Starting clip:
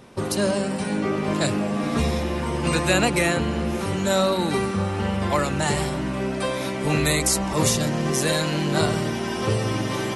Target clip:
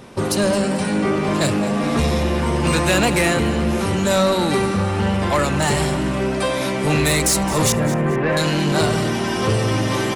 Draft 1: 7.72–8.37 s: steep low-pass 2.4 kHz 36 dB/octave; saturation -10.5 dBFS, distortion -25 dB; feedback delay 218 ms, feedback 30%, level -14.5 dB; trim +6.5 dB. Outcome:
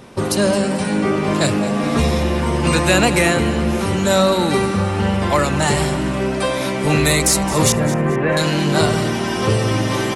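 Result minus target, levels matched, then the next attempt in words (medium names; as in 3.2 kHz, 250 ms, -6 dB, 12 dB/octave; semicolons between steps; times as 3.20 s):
saturation: distortion -10 dB
7.72–8.37 s: steep low-pass 2.4 kHz 36 dB/octave; saturation -18 dBFS, distortion -14 dB; feedback delay 218 ms, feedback 30%, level -14.5 dB; trim +6.5 dB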